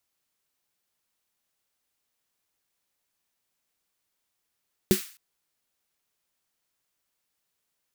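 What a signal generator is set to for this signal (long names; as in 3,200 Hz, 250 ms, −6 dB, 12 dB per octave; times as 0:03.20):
synth snare length 0.26 s, tones 200 Hz, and 370 Hz, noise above 1,400 Hz, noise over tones −10.5 dB, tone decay 0.12 s, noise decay 0.45 s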